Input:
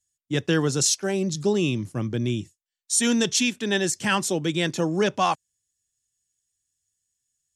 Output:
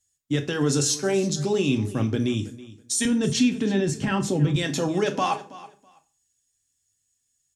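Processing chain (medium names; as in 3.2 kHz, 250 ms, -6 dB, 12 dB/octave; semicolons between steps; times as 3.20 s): 3.05–4.56 s: RIAA curve playback; peak limiter -19.5 dBFS, peak gain reduction 11.5 dB; feedback delay 326 ms, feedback 19%, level -18 dB; on a send at -5 dB: reverberation RT60 0.35 s, pre-delay 4 ms; on the sum: trim +3.5 dB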